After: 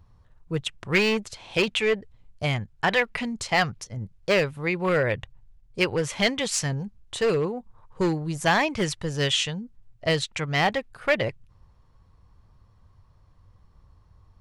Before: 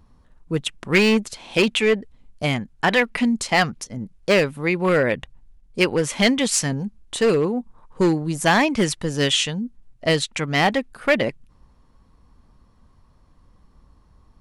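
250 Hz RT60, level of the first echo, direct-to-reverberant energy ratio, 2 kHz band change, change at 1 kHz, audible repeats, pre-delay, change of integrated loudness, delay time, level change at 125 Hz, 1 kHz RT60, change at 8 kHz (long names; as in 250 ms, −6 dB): no reverb audible, no echo audible, no reverb audible, −3.5 dB, −3.5 dB, no echo audible, no reverb audible, −4.5 dB, no echo audible, −2.5 dB, no reverb audible, −6.0 dB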